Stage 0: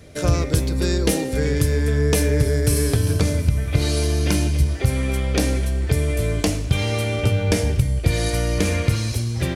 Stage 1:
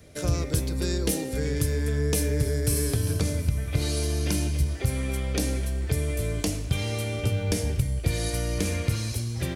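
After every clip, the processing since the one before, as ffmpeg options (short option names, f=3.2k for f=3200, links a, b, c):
-filter_complex "[0:a]highshelf=f=7.9k:g=6,acrossover=split=480|3000[a][b][c];[b]acompressor=threshold=-29dB:ratio=6[d];[a][d][c]amix=inputs=3:normalize=0,volume=-6.5dB"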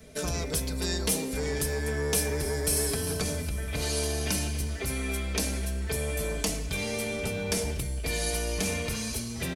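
-filter_complex "[0:a]aecho=1:1:4.6:0.73,acrossover=split=630[a][b];[a]asoftclip=type=tanh:threshold=-28.5dB[c];[c][b]amix=inputs=2:normalize=0"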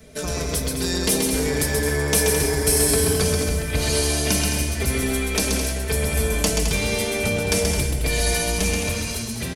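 -af "dynaudnorm=f=120:g=17:m=3.5dB,aecho=1:1:130|214.5|269.4|305.1|328.3:0.631|0.398|0.251|0.158|0.1,volume=3.5dB"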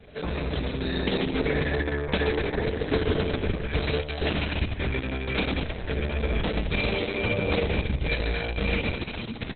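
-af "aeval=exprs='(tanh(5.01*val(0)+0.4)-tanh(0.4))/5.01':c=same" -ar 48000 -c:a libopus -b:a 6k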